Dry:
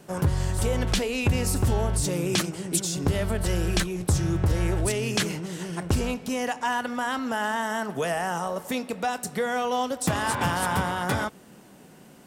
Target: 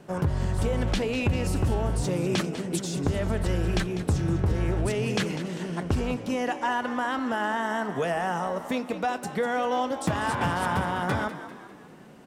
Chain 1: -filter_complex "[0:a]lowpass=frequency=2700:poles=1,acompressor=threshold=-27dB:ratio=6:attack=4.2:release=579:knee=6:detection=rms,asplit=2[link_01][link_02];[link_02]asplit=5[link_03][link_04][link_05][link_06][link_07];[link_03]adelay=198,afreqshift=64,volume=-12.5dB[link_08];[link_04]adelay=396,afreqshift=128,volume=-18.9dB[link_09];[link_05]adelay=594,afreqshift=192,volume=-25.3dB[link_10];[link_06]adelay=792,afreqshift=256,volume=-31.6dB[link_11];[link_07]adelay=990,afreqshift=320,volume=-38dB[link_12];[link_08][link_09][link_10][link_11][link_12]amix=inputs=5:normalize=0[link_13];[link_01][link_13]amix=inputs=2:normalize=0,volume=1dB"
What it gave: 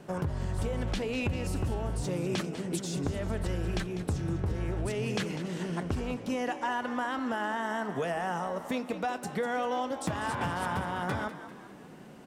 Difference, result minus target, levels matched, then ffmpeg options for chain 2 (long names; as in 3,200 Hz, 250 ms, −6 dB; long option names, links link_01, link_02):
downward compressor: peak gain reduction +7.5 dB
-filter_complex "[0:a]lowpass=frequency=2700:poles=1,acompressor=threshold=-18dB:ratio=6:attack=4.2:release=579:knee=6:detection=rms,asplit=2[link_01][link_02];[link_02]asplit=5[link_03][link_04][link_05][link_06][link_07];[link_03]adelay=198,afreqshift=64,volume=-12.5dB[link_08];[link_04]adelay=396,afreqshift=128,volume=-18.9dB[link_09];[link_05]adelay=594,afreqshift=192,volume=-25.3dB[link_10];[link_06]adelay=792,afreqshift=256,volume=-31.6dB[link_11];[link_07]adelay=990,afreqshift=320,volume=-38dB[link_12];[link_08][link_09][link_10][link_11][link_12]amix=inputs=5:normalize=0[link_13];[link_01][link_13]amix=inputs=2:normalize=0,volume=1dB"